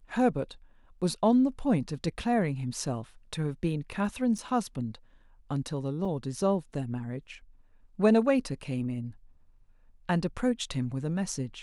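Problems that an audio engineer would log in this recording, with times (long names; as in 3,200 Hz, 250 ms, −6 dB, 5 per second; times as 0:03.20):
0:04.38–0:04.39: drop-out 5.6 ms
0:06.05: drop-out 2.9 ms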